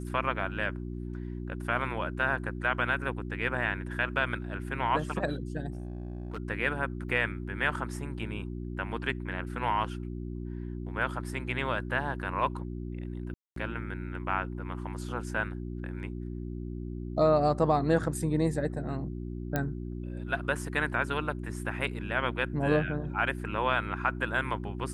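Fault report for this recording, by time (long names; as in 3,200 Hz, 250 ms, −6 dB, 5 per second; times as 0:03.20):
mains hum 60 Hz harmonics 6 −37 dBFS
0:05.72–0:06.38: clipping −32.5 dBFS
0:07.09: drop-out 4.4 ms
0:13.34–0:13.56: drop-out 223 ms
0:19.56: click −15 dBFS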